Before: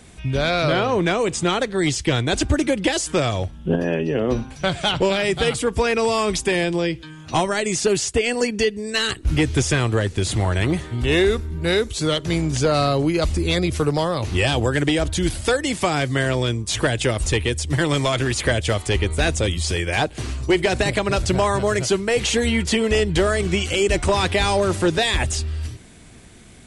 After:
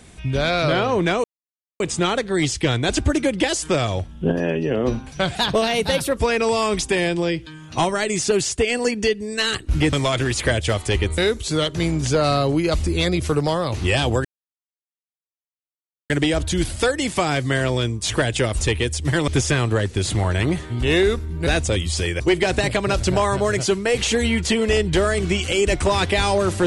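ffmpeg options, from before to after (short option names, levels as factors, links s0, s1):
-filter_complex "[0:a]asplit=10[s0][s1][s2][s3][s4][s5][s6][s7][s8][s9];[s0]atrim=end=1.24,asetpts=PTS-STARTPTS,afade=t=out:st=1.236:d=0.004:c=hsin,apad=pad_dur=0.56[s10];[s1]atrim=start=1.24:end=4.794,asetpts=PTS-STARTPTS,afade=t=in:d=0.004:c=hsin[s11];[s2]atrim=start=4.79:end=5.73,asetpts=PTS-STARTPTS,asetrate=50715,aresample=44100[s12];[s3]atrim=start=5.726:end=9.492[s13];[s4]atrim=start=17.928:end=19.182[s14];[s5]atrim=start=11.678:end=14.75,asetpts=PTS-STARTPTS,afade=t=out:st=3.068:d=0.004:c=hsin,apad=pad_dur=1.85[s15];[s6]atrim=start=14.75:end=17.932,asetpts=PTS-STARTPTS,afade=t=in:d=0.004:c=hsin[s16];[s7]atrim=start=9.488:end=11.682[s17];[s8]atrim=start=19.178:end=19.912[s18];[s9]atrim=start=20.418[s19];[s10][s11]concat=n=2:v=0:a=1[s20];[s20][s12]acrossfade=d=0.004:c1=hsin:c2=hsin[s21];[s21][s13]acrossfade=d=0.004:c1=hsin:c2=hsin[s22];[s22][s14]acrossfade=d=0.004:c1=hsin:c2=hsin[s23];[s15][s16]concat=n=2:v=0:a=1[s24];[s23][s24]acrossfade=d=0.004:c1=hsin:c2=hsin[s25];[s25][s17]acrossfade=d=0.004:c1=hsin:c2=hsin[s26];[s26][s18]acrossfade=d=0.004:c1=hsin:c2=hsin[s27];[s27][s19]acrossfade=d=0.004:c1=hsin:c2=hsin"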